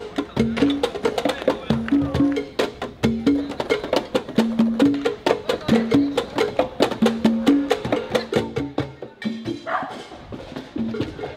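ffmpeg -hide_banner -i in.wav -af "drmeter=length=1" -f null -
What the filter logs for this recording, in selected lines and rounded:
Channel 1: DR: 13.2
Overall DR: 13.2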